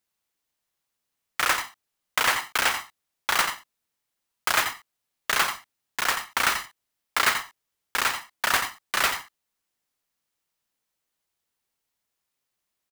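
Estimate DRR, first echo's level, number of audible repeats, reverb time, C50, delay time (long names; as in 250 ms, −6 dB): no reverb audible, −8.5 dB, 1, no reverb audible, no reverb audible, 86 ms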